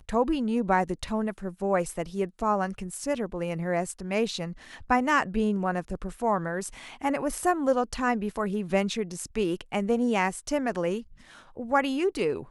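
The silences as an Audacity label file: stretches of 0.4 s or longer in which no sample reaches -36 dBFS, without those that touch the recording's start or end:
11.010000	11.570000	silence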